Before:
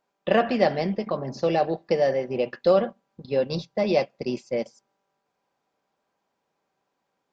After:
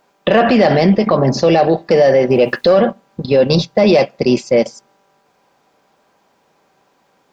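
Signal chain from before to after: saturation -10 dBFS, distortion -22 dB; 2.30–2.77 s: word length cut 12-bit, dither none; loudness maximiser +21.5 dB; trim -2.5 dB

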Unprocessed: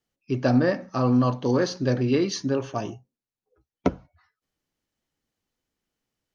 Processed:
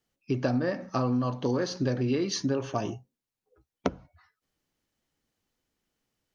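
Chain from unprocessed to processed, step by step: compression 6:1, threshold -26 dBFS, peak gain reduction 11 dB; trim +2 dB

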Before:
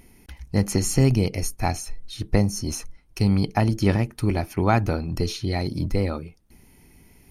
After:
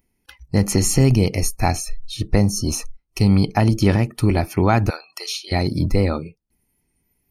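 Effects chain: 4.90–5.52 s: high-pass 1.2 kHz 12 dB/octave; spectral noise reduction 24 dB; in parallel at +2 dB: peak limiter -14 dBFS, peak gain reduction 10 dB; on the sum: trim -1 dB

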